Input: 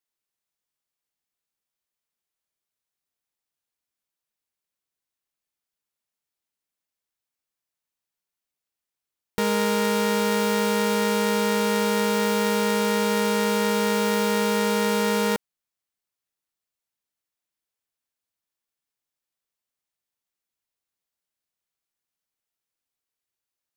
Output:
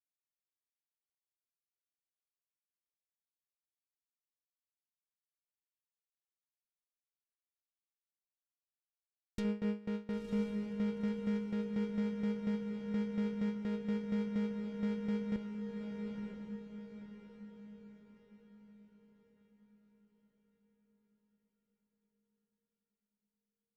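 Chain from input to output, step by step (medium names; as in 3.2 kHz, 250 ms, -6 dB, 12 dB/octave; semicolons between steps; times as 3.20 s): low-pass that closes with the level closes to 1.9 kHz, closed at -19.5 dBFS; amplifier tone stack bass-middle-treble 10-0-1; gate with hold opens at -34 dBFS; 9.42–9.90 s: doubling 24 ms -6 dB; on a send: echo that smears into a reverb 977 ms, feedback 43%, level -3.5 dB; on the sum: trim +7.5 dB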